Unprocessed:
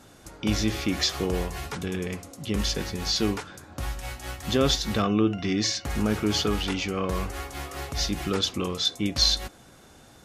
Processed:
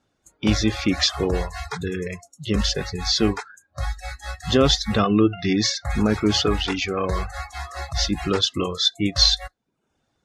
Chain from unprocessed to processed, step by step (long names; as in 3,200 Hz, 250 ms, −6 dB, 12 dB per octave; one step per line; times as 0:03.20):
noise reduction from a noise print of the clip's start 24 dB
low-pass filter 6,400 Hz 12 dB per octave
reverb reduction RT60 0.54 s
level +6 dB